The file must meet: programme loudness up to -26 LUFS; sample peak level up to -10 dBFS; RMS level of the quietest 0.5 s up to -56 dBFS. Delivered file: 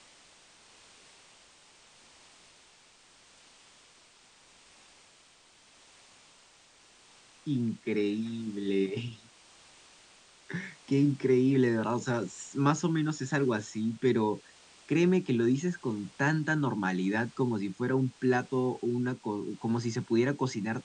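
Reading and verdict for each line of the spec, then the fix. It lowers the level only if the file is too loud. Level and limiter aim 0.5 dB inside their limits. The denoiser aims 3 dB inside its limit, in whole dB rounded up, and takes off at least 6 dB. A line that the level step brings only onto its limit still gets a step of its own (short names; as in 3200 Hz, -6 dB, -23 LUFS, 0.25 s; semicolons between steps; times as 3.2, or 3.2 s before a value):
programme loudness -30.0 LUFS: OK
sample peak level -13.0 dBFS: OK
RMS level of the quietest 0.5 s -60 dBFS: OK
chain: none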